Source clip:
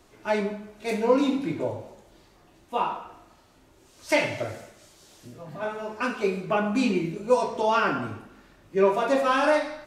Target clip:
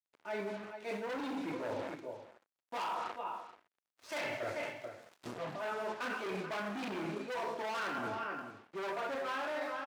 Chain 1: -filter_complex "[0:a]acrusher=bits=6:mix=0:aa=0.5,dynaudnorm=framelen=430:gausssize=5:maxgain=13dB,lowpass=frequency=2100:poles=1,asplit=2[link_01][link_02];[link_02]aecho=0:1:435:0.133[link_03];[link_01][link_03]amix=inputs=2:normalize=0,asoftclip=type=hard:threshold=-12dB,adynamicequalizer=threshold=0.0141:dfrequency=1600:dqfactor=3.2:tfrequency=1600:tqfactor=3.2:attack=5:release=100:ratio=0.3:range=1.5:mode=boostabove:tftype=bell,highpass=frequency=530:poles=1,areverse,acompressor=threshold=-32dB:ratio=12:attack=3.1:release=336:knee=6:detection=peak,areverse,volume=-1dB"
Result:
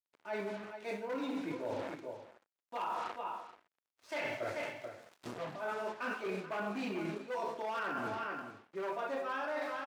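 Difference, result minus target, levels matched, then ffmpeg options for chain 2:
hard clipping: distortion −7 dB
-filter_complex "[0:a]acrusher=bits=6:mix=0:aa=0.5,dynaudnorm=framelen=430:gausssize=5:maxgain=13dB,lowpass=frequency=2100:poles=1,asplit=2[link_01][link_02];[link_02]aecho=0:1:435:0.133[link_03];[link_01][link_03]amix=inputs=2:normalize=0,asoftclip=type=hard:threshold=-20dB,adynamicequalizer=threshold=0.0141:dfrequency=1600:dqfactor=3.2:tfrequency=1600:tqfactor=3.2:attack=5:release=100:ratio=0.3:range=1.5:mode=boostabove:tftype=bell,highpass=frequency=530:poles=1,areverse,acompressor=threshold=-32dB:ratio=12:attack=3.1:release=336:knee=6:detection=peak,areverse,volume=-1dB"

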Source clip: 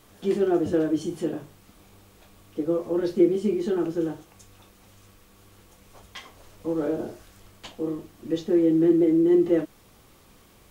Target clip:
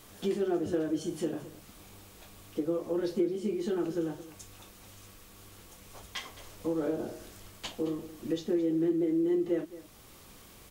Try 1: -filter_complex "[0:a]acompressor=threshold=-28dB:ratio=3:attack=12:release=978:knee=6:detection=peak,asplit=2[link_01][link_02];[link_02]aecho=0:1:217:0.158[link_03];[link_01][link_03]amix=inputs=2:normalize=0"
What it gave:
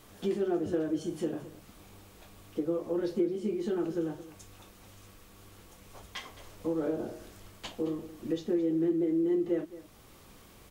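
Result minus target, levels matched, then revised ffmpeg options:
4,000 Hz band −3.0 dB
-filter_complex "[0:a]acompressor=threshold=-28dB:ratio=3:attack=12:release=978:knee=6:detection=peak,highshelf=frequency=2800:gain=5,asplit=2[link_01][link_02];[link_02]aecho=0:1:217:0.158[link_03];[link_01][link_03]amix=inputs=2:normalize=0"

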